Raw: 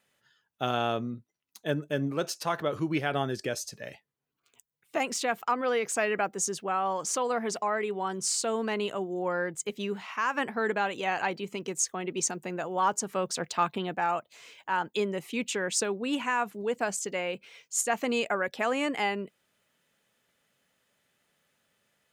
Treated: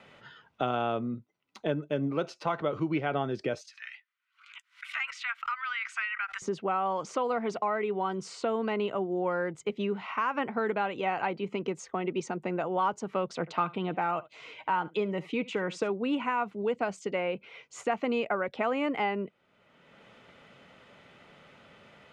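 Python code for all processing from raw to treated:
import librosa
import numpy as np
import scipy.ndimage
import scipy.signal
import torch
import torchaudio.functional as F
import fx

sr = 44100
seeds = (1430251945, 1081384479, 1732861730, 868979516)

y = fx.chain(x, sr, fx.steep_highpass(hz=1400.0, slope=36),
    fx.pre_swell(db_per_s=140.0), at=(3.61, 6.42))
y = fx.chain(y, sr, fx.comb(ms=6.4, depth=0.31),
    fx.echo_single(ms=70, db=-21.5), at=(13.4, 15.9))
y = scipy.signal.sosfilt(scipy.signal.butter(2, 2500.0, 'lowpass', fs=sr, output='sos'), y)
y = fx.notch(y, sr, hz=1700.0, q=6.8)
y = fx.band_squash(y, sr, depth_pct=70)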